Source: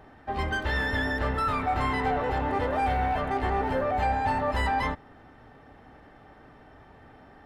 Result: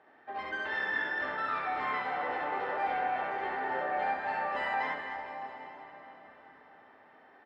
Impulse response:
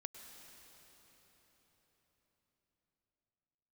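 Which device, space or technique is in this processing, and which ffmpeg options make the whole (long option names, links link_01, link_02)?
station announcement: -filter_complex "[0:a]highpass=370,lowpass=3800,equalizer=frequency=1800:width_type=o:width=0.6:gain=4,aecho=1:1:67.06|265.3:0.891|0.282[link_01];[1:a]atrim=start_sample=2205[link_02];[link_01][link_02]afir=irnorm=-1:irlink=0,volume=-4dB"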